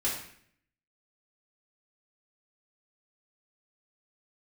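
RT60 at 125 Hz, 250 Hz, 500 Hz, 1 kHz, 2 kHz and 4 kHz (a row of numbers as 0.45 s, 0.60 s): 0.80 s, 0.75 s, 0.60 s, 0.60 s, 0.65 s, 0.55 s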